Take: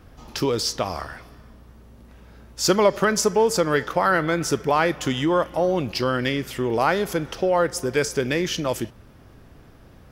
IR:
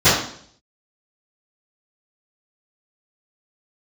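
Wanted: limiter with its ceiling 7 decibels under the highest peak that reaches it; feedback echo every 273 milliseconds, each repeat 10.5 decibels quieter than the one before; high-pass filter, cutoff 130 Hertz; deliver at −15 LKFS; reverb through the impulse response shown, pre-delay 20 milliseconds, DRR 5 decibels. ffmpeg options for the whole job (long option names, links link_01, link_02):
-filter_complex "[0:a]highpass=130,alimiter=limit=-12dB:level=0:latency=1,aecho=1:1:273|546|819:0.299|0.0896|0.0269,asplit=2[link_01][link_02];[1:a]atrim=start_sample=2205,adelay=20[link_03];[link_02][link_03]afir=irnorm=-1:irlink=0,volume=-30.5dB[link_04];[link_01][link_04]amix=inputs=2:normalize=0,volume=7.5dB"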